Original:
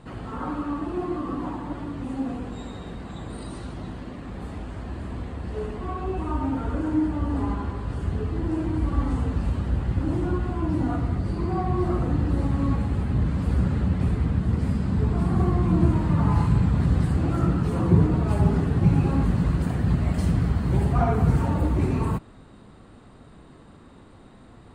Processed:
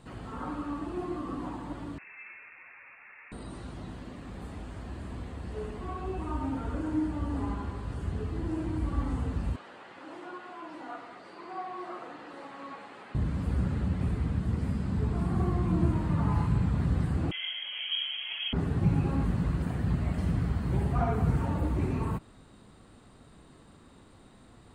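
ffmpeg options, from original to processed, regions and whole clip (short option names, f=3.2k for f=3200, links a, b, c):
-filter_complex "[0:a]asettb=1/sr,asplit=3[a][b][c];[a]atrim=end=1.984[d];[b]atrim=start=1.98:end=3.32,asetpts=PTS-STARTPTS,afade=t=in:d=0.004:c=qsin,afade=t=out:st=1.336:d=0.004:c=qsin,highpass=730,lowpass=f=2.5k:t=q:w=0.5098,lowpass=f=2.5k:t=q:w=0.6013,lowpass=f=2.5k:t=q:w=0.9,lowpass=f=2.5k:t=q:w=2.563,afreqshift=-2900[e];[c]atrim=start=3.316[f];[d][e]acrossfade=d=0.004:c1=hsin:c2=qsin[g];[g][f]acrossfade=d=0.004:c1=qsin:c2=hsin,asettb=1/sr,asplit=3[h][i][j];[h]atrim=end=9.564[k];[i]atrim=start=9.56:end=13.15,asetpts=PTS-STARTPTS,afade=t=in:d=0.004:c=qsin,afade=t=out:st=3.586:d=0.004:c=qsin,highpass=510,lowpass=2.9k,aemphasis=mode=production:type=bsi[l];[j]atrim=start=13.146[m];[k][l]acrossfade=d=0.004:c1=hsin:c2=qsin[n];[n][m]acrossfade=d=0.004:c1=qsin:c2=hsin,asettb=1/sr,asplit=3[o][p][q];[o]atrim=end=17.314[r];[p]atrim=start=17.31:end=18.53,asetpts=PTS-STARTPTS,afade=t=in:d=0.004:c=qsin,afade=t=out:st=1.216:d=0.004:c=qsin,highpass=f=300:p=1,lowpass=f=2.9k:t=q:w=0.5098,lowpass=f=2.9k:t=q:w=0.6013,lowpass=f=2.9k:t=q:w=0.9,lowpass=f=2.9k:t=q:w=2.563,afreqshift=-3400[s];[q]atrim=start=18.526[t];[r][s]acrossfade=d=0.004:c1=hsin:c2=qsin[u];[u][t]acrossfade=d=0.004:c1=qsin:c2=hsin,acrossover=split=3000[v][w];[w]acompressor=threshold=-59dB:ratio=4:attack=1:release=60[x];[v][x]amix=inputs=2:normalize=0,highshelf=f=3.6k:g=9.5,volume=-6.5dB"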